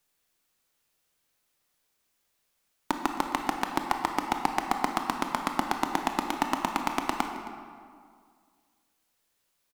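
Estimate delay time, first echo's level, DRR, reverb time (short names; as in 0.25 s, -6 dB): 0.267 s, -18.5 dB, 4.0 dB, 2.1 s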